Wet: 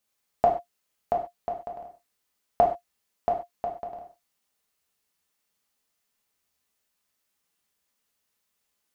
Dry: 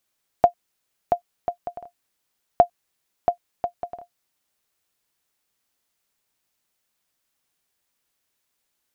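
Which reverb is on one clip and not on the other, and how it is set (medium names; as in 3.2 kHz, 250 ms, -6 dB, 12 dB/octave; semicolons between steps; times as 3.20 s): gated-style reverb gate 160 ms falling, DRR -1 dB; trim -5 dB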